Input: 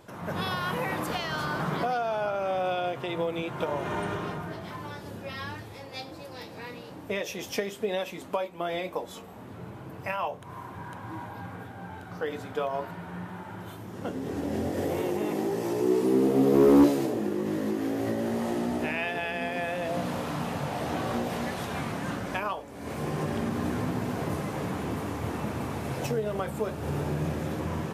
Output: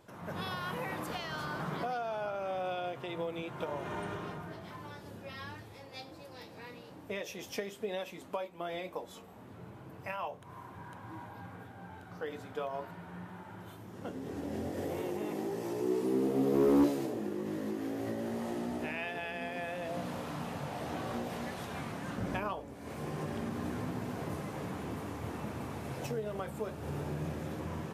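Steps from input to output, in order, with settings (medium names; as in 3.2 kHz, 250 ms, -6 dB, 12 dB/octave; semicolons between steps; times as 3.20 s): 22.18–22.74 s: bass shelf 460 Hz +9 dB; trim -7.5 dB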